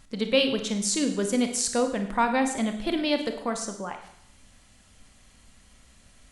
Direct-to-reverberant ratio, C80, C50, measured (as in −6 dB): 6.0 dB, 11.0 dB, 8.0 dB